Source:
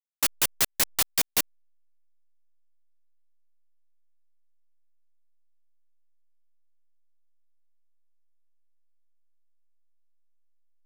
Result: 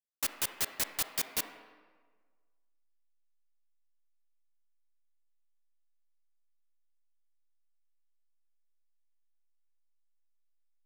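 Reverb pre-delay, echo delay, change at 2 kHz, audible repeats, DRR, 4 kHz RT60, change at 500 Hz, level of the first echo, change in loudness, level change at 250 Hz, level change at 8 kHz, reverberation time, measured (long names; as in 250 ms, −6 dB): 28 ms, no echo audible, −8.0 dB, no echo audible, 7.0 dB, 1.0 s, −7.5 dB, no echo audible, −8.5 dB, −8.0 dB, −8.5 dB, 1.5 s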